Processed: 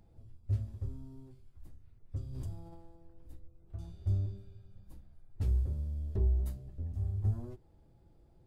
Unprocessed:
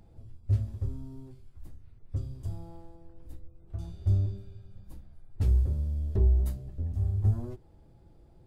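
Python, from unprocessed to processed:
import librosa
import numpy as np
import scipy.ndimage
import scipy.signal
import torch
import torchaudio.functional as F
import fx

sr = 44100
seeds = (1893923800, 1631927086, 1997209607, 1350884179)

y = fx.pre_swell(x, sr, db_per_s=33.0, at=(2.16, 2.78))
y = y * librosa.db_to_amplitude(-6.0)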